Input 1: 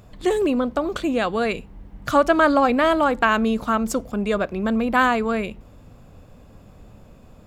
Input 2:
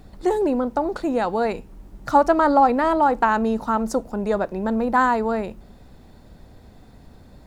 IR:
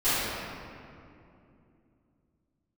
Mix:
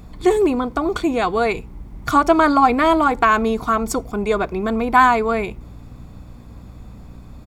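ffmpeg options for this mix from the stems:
-filter_complex "[0:a]equalizer=f=3.1k:t=o:w=0.22:g=-5,aecho=1:1:0.9:0.42,volume=2dB[a];[1:a]aeval=exprs='val(0)+0.0126*(sin(2*PI*60*n/s)+sin(2*PI*2*60*n/s)/2+sin(2*PI*3*60*n/s)/3+sin(2*PI*4*60*n/s)/4+sin(2*PI*5*60*n/s)/5)':c=same,adelay=3.1,volume=-1.5dB[b];[a][b]amix=inputs=2:normalize=0"

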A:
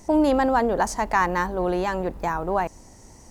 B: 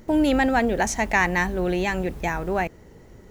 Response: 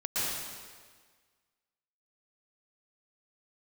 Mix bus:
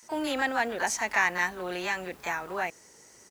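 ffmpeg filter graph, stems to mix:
-filter_complex "[0:a]highpass=f=1.3k:w=0.5412,highpass=f=1.3k:w=1.3066,acompressor=threshold=-35dB:ratio=1.5,volume=-1.5dB[a];[1:a]highpass=f=900:p=1,adelay=28,volume=-3dB[b];[a][b]amix=inputs=2:normalize=0"

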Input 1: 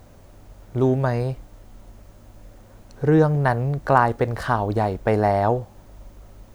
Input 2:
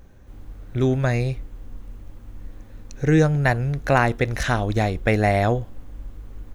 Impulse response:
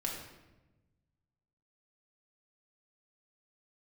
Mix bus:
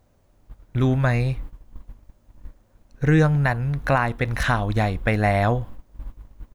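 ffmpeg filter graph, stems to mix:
-filter_complex "[0:a]volume=-13.5dB,asplit=2[a][b];[1:a]equalizer=f=400:t=o:w=0.67:g=-5,equalizer=f=1k:t=o:w=0.67:g=6,equalizer=f=6.3k:t=o:w=0.67:g=-7,adelay=0.3,volume=1.5dB[c];[b]apad=whole_len=288669[d];[c][d]sidechaingate=range=-33dB:threshold=-54dB:ratio=16:detection=peak[e];[a][e]amix=inputs=2:normalize=0,alimiter=limit=-8.5dB:level=0:latency=1:release=456"

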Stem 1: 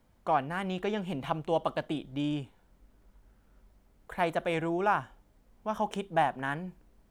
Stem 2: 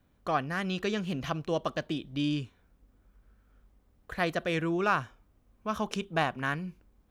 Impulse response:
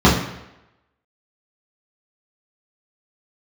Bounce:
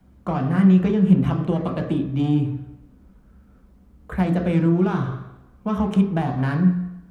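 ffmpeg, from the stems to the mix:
-filter_complex "[0:a]volume=1.5dB,asplit=2[a][b];[1:a]lowpass=1.9k,asoftclip=type=hard:threshold=-27.5dB,volume=3dB,asplit=2[c][d];[d]volume=-23.5dB[e];[b]apad=whole_len=313497[f];[c][f]sidechaincompress=threshold=-37dB:ratio=8:attack=16:release=234[g];[2:a]atrim=start_sample=2205[h];[e][h]afir=irnorm=-1:irlink=0[i];[a][g][i]amix=inputs=3:normalize=0,acrossover=split=300[j][k];[k]acompressor=threshold=-25dB:ratio=4[l];[j][l]amix=inputs=2:normalize=0"

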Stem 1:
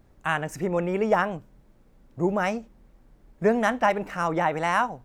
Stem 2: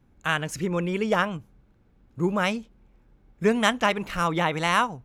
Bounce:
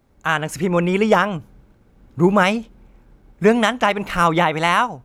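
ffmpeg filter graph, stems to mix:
-filter_complex "[0:a]highpass=f=340:p=1,bandreject=f=1.7k:w=12,volume=0.5dB[a];[1:a]agate=range=-33dB:threshold=-57dB:ratio=3:detection=peak,dynaudnorm=f=140:g=9:m=7.5dB,volume=2.5dB[b];[a][b]amix=inputs=2:normalize=0,alimiter=limit=-3.5dB:level=0:latency=1:release=245"

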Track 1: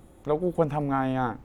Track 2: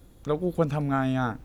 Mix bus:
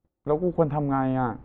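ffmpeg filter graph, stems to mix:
-filter_complex "[0:a]volume=1dB[a];[1:a]volume=-14.5dB[b];[a][b]amix=inputs=2:normalize=0,lowpass=1.9k,agate=range=-32dB:threshold=-45dB:ratio=16:detection=peak"

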